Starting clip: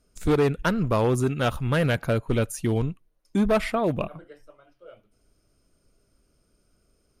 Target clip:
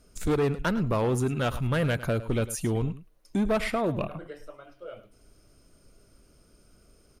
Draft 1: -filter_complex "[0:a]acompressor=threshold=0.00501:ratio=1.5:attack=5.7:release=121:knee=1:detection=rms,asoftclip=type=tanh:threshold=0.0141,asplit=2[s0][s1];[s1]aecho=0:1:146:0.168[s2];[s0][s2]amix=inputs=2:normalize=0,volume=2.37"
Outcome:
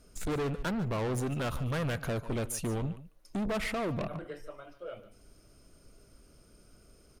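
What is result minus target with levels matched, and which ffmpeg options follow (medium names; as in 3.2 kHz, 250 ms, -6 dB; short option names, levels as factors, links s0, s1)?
saturation: distortion +14 dB; echo 41 ms late
-filter_complex "[0:a]acompressor=threshold=0.00501:ratio=1.5:attack=5.7:release=121:knee=1:detection=rms,asoftclip=type=tanh:threshold=0.0562,asplit=2[s0][s1];[s1]aecho=0:1:105:0.168[s2];[s0][s2]amix=inputs=2:normalize=0,volume=2.37"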